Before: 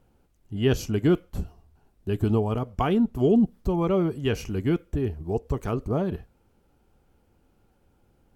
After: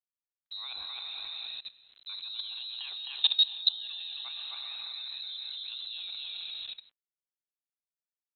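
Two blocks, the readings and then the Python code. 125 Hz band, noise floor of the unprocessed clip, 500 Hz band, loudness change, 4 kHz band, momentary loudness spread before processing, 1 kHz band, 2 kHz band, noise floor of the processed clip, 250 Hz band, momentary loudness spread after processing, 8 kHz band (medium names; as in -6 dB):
under -40 dB, -66 dBFS, under -40 dB, -7.0 dB, +14.0 dB, 11 LU, -20.5 dB, -8.0 dB, under -85 dBFS, under -40 dB, 16 LU, no reading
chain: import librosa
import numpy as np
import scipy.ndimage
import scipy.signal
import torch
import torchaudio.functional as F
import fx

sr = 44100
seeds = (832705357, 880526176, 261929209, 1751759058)

y = fx.tremolo_random(x, sr, seeds[0], hz=3.5, depth_pct=80)
y = fx.peak_eq(y, sr, hz=1500.0, db=9.0, octaves=0.48)
y = fx.hum_notches(y, sr, base_hz=60, count=3)
y = y + 10.0 ** (-5.0 / 20.0) * np.pad(y, (int(263 * sr / 1000.0), 0))[:len(y)]
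y = fx.rev_gated(y, sr, seeds[1], gate_ms=500, shape='rising', drr_db=6.0)
y = np.where(np.abs(y) >= 10.0 ** (-48.5 / 20.0), y, 0.0)
y = fx.freq_invert(y, sr, carrier_hz=4000)
y = fx.dynamic_eq(y, sr, hz=980.0, q=1.2, threshold_db=-45.0, ratio=4.0, max_db=4)
y = fx.level_steps(y, sr, step_db=20)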